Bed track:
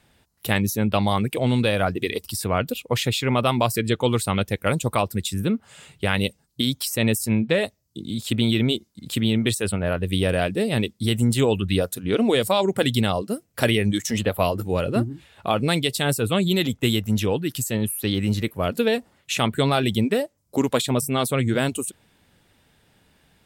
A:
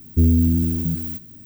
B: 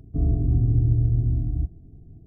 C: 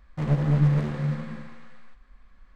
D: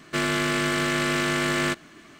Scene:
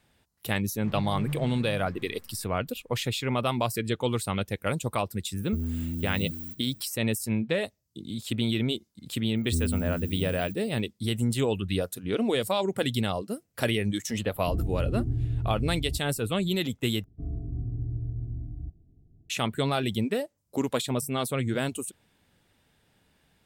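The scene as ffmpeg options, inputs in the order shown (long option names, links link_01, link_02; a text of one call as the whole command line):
ffmpeg -i bed.wav -i cue0.wav -i cue1.wav -i cue2.wav -filter_complex "[1:a]asplit=2[link_01][link_02];[2:a]asplit=2[link_03][link_04];[0:a]volume=-6.5dB[link_05];[link_01]acompressor=threshold=-18dB:ratio=6:attack=3.2:release=140:knee=1:detection=peak[link_06];[link_05]asplit=2[link_07][link_08];[link_07]atrim=end=17.044[link_09];[link_04]atrim=end=2.26,asetpts=PTS-STARTPTS,volume=-12.5dB[link_10];[link_08]atrim=start=19.296[link_11];[3:a]atrim=end=2.55,asetpts=PTS-STARTPTS,volume=-12.5dB,afade=type=in:duration=0.004:curve=hsin,afade=type=out:start_time=2.546:duration=0.004:curve=hsin,adelay=660[link_12];[link_06]atrim=end=1.45,asetpts=PTS-STARTPTS,volume=-9.5dB,afade=type=in:duration=0.004:curve=hsin,afade=type=out:start_time=1.446:duration=0.004:curve=hsin,adelay=5360[link_13];[link_02]atrim=end=1.45,asetpts=PTS-STARTPTS,volume=-12.5dB,afade=type=in:duration=0.004:curve=hsin,afade=type=out:start_time=1.446:duration=0.004:curve=hsin,adelay=9350[link_14];[link_03]atrim=end=2.26,asetpts=PTS-STARTPTS,volume=-8.5dB,afade=type=in:duration=0.004:curve=hsin,afade=type=out:start_time=2.256:duration=0.004:curve=hsin,adelay=14320[link_15];[link_09][link_10]acrossfade=duration=0.004:curve1=hsin:curve2=hsin[link_16];[link_16][link_11]acrossfade=duration=0.004:curve1=hsin:curve2=hsin[link_17];[link_17][link_12][link_13][link_14][link_15]amix=inputs=5:normalize=0" out.wav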